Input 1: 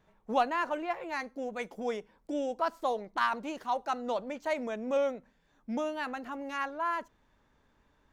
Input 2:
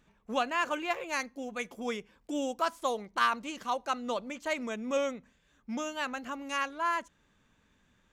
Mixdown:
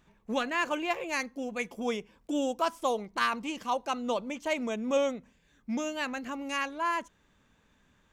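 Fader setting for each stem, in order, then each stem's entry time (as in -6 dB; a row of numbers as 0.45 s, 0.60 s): -5.0 dB, +1.0 dB; 0.00 s, 0.00 s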